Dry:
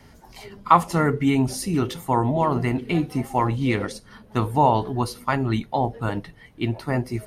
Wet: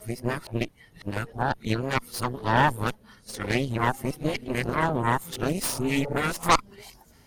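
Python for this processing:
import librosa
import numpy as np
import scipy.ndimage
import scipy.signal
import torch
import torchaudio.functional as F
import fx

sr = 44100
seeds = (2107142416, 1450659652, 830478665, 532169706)

y = x[::-1].copy()
y = fx.high_shelf(y, sr, hz=4600.0, db=10.0)
y = fx.cheby_harmonics(y, sr, harmonics=(8,), levels_db=(-11,), full_scale_db=-0.5)
y = fx.spec_repair(y, sr, seeds[0], start_s=5.69, length_s=0.38, low_hz=410.0, high_hz=1400.0, source='both')
y = y * 10.0 ** (-7.0 / 20.0)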